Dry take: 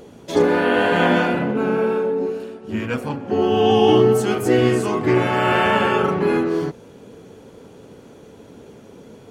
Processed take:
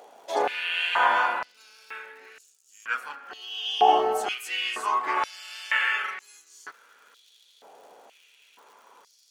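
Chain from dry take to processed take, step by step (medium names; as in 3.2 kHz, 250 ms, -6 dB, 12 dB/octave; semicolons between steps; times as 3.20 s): crackle 130 per s -41 dBFS; step-sequenced high-pass 2.1 Hz 740–6800 Hz; trim -6.5 dB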